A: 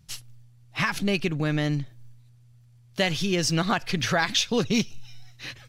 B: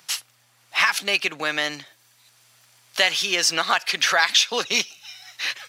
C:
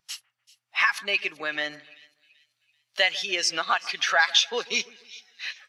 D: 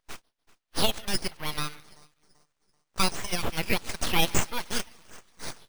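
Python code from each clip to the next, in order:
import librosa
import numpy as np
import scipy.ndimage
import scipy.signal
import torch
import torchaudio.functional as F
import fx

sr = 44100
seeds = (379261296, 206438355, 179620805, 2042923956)

y1 = scipy.signal.sosfilt(scipy.signal.butter(2, 840.0, 'highpass', fs=sr, output='sos'), x)
y1 = fx.band_squash(y1, sr, depth_pct=40)
y1 = y1 * librosa.db_to_amplitude(8.5)
y2 = fx.echo_split(y1, sr, split_hz=2200.0, low_ms=146, high_ms=385, feedback_pct=52, wet_db=-13.5)
y2 = fx.spectral_expand(y2, sr, expansion=1.5)
y2 = y2 * librosa.db_to_amplitude(-3.5)
y3 = np.abs(y2)
y3 = np.repeat(scipy.signal.resample_poly(y3, 1, 3), 3)[:len(y3)]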